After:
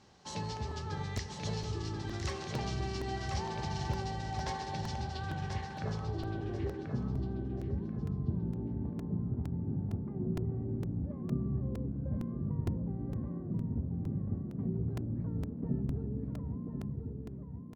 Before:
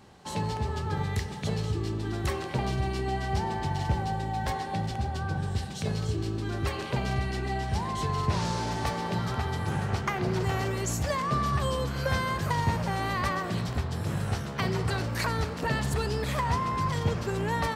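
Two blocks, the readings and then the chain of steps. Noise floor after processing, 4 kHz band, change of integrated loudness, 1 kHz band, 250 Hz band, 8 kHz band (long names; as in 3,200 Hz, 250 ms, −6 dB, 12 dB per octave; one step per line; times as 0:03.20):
−43 dBFS, −10.0 dB, −7.0 dB, −13.0 dB, −3.5 dB, below −10 dB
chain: fade-out on the ending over 1.96 s
low-pass filter sweep 5,900 Hz → 260 Hz, 0:04.98–0:06.93
repeating echo 1,036 ms, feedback 26%, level −5.5 dB
regular buffer underruns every 0.46 s, samples 128, repeat, from 0:00.71
level −8 dB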